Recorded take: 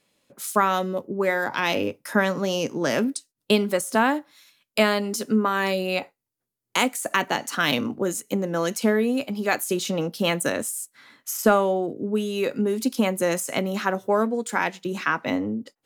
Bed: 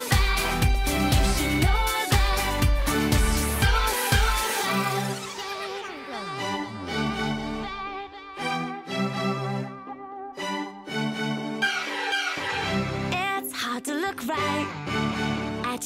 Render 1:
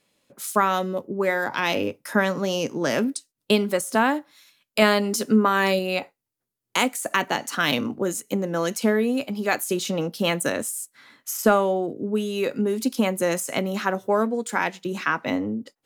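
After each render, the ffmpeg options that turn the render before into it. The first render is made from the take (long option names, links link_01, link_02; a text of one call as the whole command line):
ffmpeg -i in.wav -filter_complex "[0:a]asplit=3[link_01][link_02][link_03];[link_01]atrim=end=4.822[link_04];[link_02]atrim=start=4.818:end=5.792,asetpts=PTS-STARTPTS,volume=3dB[link_05];[link_03]atrim=start=5.788[link_06];[link_04][link_05]acrossfade=duration=0.004:curve1=hsin:curve2=hsin[link_07];[link_07][link_06]acrossfade=duration=0.004:curve1=hsin:curve2=hsin" out.wav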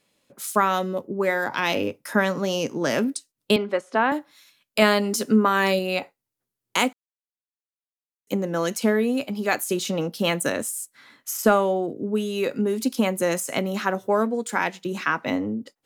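ffmpeg -i in.wav -filter_complex "[0:a]asettb=1/sr,asplit=3[link_01][link_02][link_03];[link_01]atrim=end=3.564[link_04];[link_02]atrim=start=3.56:end=4.12,asetpts=PTS-STARTPTS,afade=type=in:duration=0.004:curve=qsin,afade=type=out:start_time=0.556:duration=0.004:curve=qsin,highpass=290,lowpass=2700[link_05];[link_03]atrim=start=4.116[link_06];[link_04][link_05]acrossfade=duration=0.004:curve1=hsin:curve2=qsin[link_07];[link_07][link_06]acrossfade=duration=0.004:curve1=qsin:curve2=hsin,asplit=3[link_08][link_09][link_10];[link_08]atrim=end=6.93,asetpts=PTS-STARTPTS,afade=type=out:start_time=6.926:duration=0.004:curve=hsin[link_11];[link_09]atrim=start=6.93:end=8.27,asetpts=PTS-STARTPTS,volume=0[link_12];[link_10]atrim=start=8.27,asetpts=PTS-STARTPTS,afade=type=in:duration=0.004:curve=hsin[link_13];[link_11][link_12][link_13]concat=n=3:v=0:a=1" out.wav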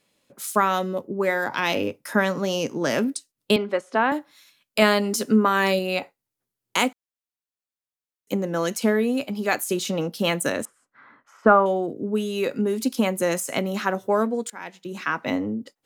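ffmpeg -i in.wav -filter_complex "[0:a]asettb=1/sr,asplit=3[link_01][link_02][link_03];[link_01]atrim=end=10.654[link_04];[link_02]atrim=start=10.65:end=11.66,asetpts=PTS-STARTPTS,afade=type=in:duration=0.004:curve=qsin,afade=type=out:start_time=1.006:duration=0.004:curve=qsin,lowpass=frequency=1300:width_type=q:width=2[link_05];[link_03]atrim=start=11.656[link_06];[link_04][link_05]acrossfade=duration=0.004:curve1=hsin:curve2=qsin[link_07];[link_07][link_06]acrossfade=duration=0.004:curve1=qsin:curve2=hsin,asplit=2[link_08][link_09];[link_08]atrim=end=14.5,asetpts=PTS-STARTPTS,afade=type=out:start_time=14.496:duration=0.004:curve=hsin:silence=0.0944061[link_10];[link_09]atrim=start=14.5,asetpts=PTS-STARTPTS,afade=type=in:duration=0.79:silence=0.0944061[link_11];[link_10][link_11]concat=n=2:v=0:a=1" out.wav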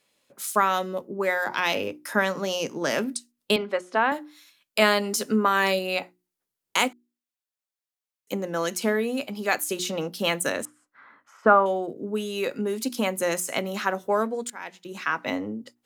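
ffmpeg -i in.wav -af "lowshelf=frequency=370:gain=-7,bandreject=frequency=60:width_type=h:width=6,bandreject=frequency=120:width_type=h:width=6,bandreject=frequency=180:width_type=h:width=6,bandreject=frequency=240:width_type=h:width=6,bandreject=frequency=300:width_type=h:width=6,bandreject=frequency=360:width_type=h:width=6" out.wav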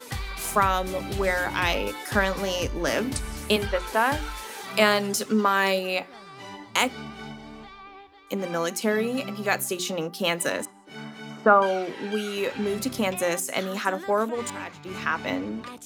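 ffmpeg -i in.wav -i bed.wav -filter_complex "[1:a]volume=-11.5dB[link_01];[0:a][link_01]amix=inputs=2:normalize=0" out.wav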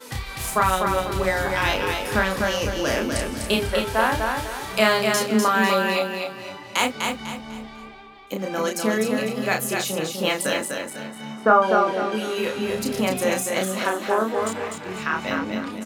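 ffmpeg -i in.wav -filter_complex "[0:a]asplit=2[link_01][link_02];[link_02]adelay=32,volume=-4dB[link_03];[link_01][link_03]amix=inputs=2:normalize=0,asplit=2[link_04][link_05];[link_05]aecho=0:1:249|498|747|996:0.596|0.208|0.073|0.0255[link_06];[link_04][link_06]amix=inputs=2:normalize=0" out.wav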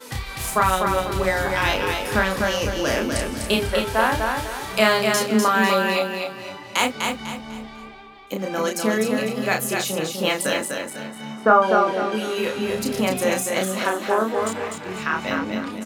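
ffmpeg -i in.wav -af "volume=1dB" out.wav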